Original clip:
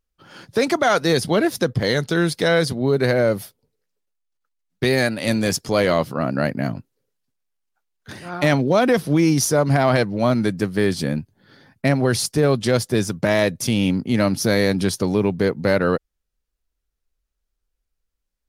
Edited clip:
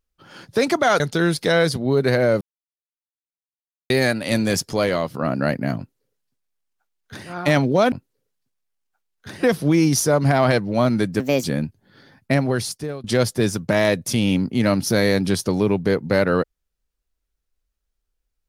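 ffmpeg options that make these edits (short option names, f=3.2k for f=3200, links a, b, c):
-filter_complex "[0:a]asplit=10[a][b][c][d][e][f][g][h][i][j];[a]atrim=end=1.002[k];[b]atrim=start=1.958:end=3.37,asetpts=PTS-STARTPTS,afade=t=out:st=1.408:d=0.004:c=hsin[l];[c]atrim=start=3.37:end=4.86,asetpts=PTS-STARTPTS,volume=0[m];[d]atrim=start=4.86:end=6.1,asetpts=PTS-STARTPTS,afade=t=in:d=0.004:c=hsin,afade=t=out:st=0.73:d=0.51:silence=0.473151[n];[e]atrim=start=6.1:end=8.882,asetpts=PTS-STARTPTS,afade=t=in:d=0.004:c=hsin:silence=0.473151[o];[f]atrim=start=6.738:end=8.252[p];[g]atrim=start=8.878:end=10.654[q];[h]atrim=start=10.65:end=10.98,asetpts=PTS-STARTPTS,asetrate=60858,aresample=44100[r];[i]atrim=start=10.976:end=12.58,asetpts=PTS-STARTPTS,afade=t=out:st=0.874:d=0.73:silence=0.0749894[s];[j]atrim=start=12.58,asetpts=PTS-STARTPTS,afade=t=in:d=0.004:c=hsin:silence=0.0749894[t];[l][m][n][o]concat=n=4:v=0:a=1[u];[k][u]acrossfade=d=0.004:c1=hsin:c2=hsin[v];[v][p]acrossfade=d=0.004:c1=hsin:c2=hsin[w];[w][q]acrossfade=d=0.004:c1=hsin:c2=hsin[x];[x][r]acrossfade=d=0.004:c1=hsin:c2=hsin[y];[s][t]concat=n=2:v=0:a=1[z];[y][z]acrossfade=d=0.004:c1=hsin:c2=hsin"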